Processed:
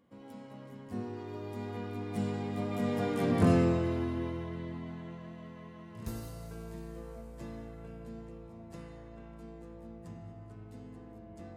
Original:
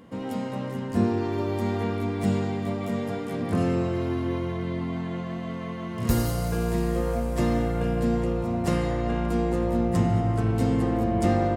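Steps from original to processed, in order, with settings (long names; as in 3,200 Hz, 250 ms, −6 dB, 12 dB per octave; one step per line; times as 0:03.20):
source passing by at 0:03.32, 12 m/s, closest 4.3 metres
level +1 dB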